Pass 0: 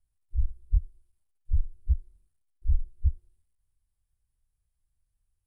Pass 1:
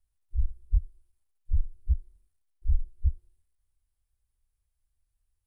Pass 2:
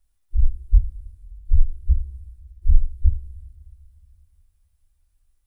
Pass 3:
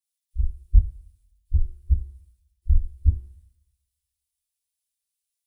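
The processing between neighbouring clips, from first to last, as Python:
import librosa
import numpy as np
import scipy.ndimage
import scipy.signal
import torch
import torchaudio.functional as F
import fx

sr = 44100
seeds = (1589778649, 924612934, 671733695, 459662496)

y1 = fx.peak_eq(x, sr, hz=150.0, db=-11.0, octaves=0.62)
y2 = fx.rev_double_slope(y1, sr, seeds[0], early_s=0.27, late_s=2.9, knee_db=-22, drr_db=2.0)
y2 = y2 * 10.0 ** (6.5 / 20.0)
y3 = fx.highpass(y2, sr, hz=72.0, slope=6)
y3 = fx.band_widen(y3, sr, depth_pct=100)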